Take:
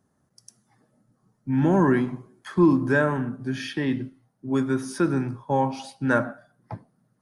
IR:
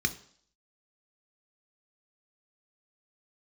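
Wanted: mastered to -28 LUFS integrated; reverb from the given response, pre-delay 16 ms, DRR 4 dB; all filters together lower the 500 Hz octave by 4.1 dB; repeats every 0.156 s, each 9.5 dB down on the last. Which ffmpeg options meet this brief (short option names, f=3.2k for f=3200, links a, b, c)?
-filter_complex "[0:a]equalizer=f=500:t=o:g=-6,aecho=1:1:156|312|468|624:0.335|0.111|0.0365|0.012,asplit=2[a][b];[1:a]atrim=start_sample=2205,adelay=16[c];[b][c]afir=irnorm=-1:irlink=0,volume=-11.5dB[d];[a][d]amix=inputs=2:normalize=0,volume=-5.5dB"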